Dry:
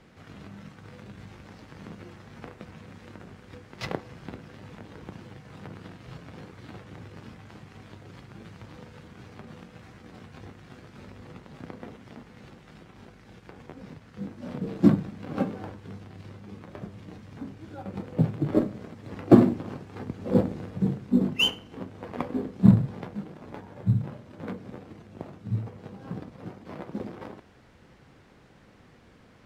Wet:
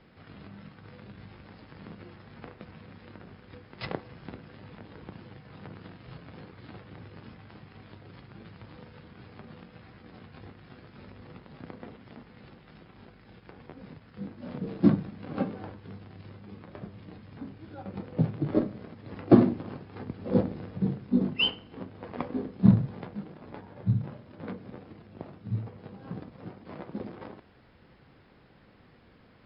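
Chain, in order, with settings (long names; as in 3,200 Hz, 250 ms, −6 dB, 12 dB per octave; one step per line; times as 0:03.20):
linear-phase brick-wall low-pass 5,300 Hz
level −2.5 dB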